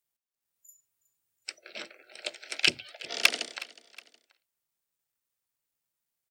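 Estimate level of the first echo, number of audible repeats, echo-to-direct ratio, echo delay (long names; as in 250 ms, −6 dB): −19.5 dB, 2, −18.5 dB, 366 ms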